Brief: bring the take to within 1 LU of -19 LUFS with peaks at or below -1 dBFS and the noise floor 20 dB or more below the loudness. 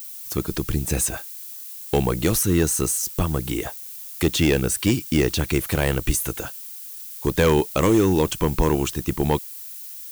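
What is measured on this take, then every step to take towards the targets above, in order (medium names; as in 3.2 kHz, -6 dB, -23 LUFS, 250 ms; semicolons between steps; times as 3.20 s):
clipped samples 0.6%; clipping level -11.0 dBFS; noise floor -37 dBFS; noise floor target -42 dBFS; loudness -22.0 LUFS; peak level -11.0 dBFS; loudness target -19.0 LUFS
-> clip repair -11 dBFS; noise print and reduce 6 dB; trim +3 dB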